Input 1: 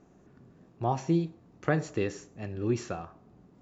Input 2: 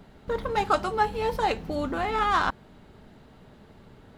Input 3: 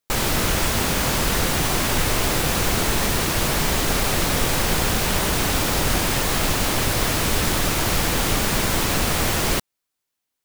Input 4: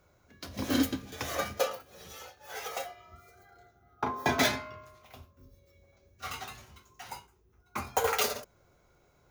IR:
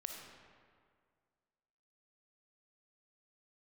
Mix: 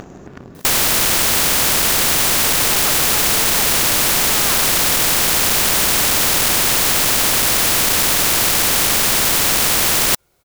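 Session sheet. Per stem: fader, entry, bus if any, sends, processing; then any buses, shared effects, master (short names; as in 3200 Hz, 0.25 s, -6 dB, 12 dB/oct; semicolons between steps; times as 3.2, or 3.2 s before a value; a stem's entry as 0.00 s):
-8.5 dB, 0.00 s, no send, dry
+2.5 dB, 2.15 s, no send, dry
+3.0 dB, 0.55 s, no send, dry
-11.5 dB, 1.30 s, no send, dry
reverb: off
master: upward compressor, threshold -34 dBFS; sample leveller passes 2; spectral compressor 4:1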